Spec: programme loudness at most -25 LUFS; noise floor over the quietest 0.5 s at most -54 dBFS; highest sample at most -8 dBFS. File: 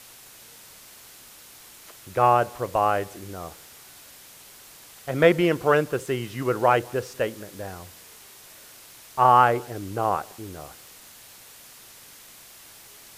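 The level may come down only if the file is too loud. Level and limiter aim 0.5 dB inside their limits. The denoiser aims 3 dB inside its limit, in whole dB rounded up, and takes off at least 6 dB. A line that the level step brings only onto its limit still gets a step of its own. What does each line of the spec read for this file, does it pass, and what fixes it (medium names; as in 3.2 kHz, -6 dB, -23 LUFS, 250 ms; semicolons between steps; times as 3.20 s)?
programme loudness -22.5 LUFS: fail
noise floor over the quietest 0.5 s -48 dBFS: fail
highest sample -4.5 dBFS: fail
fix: noise reduction 6 dB, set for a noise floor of -48 dBFS; trim -3 dB; peak limiter -8.5 dBFS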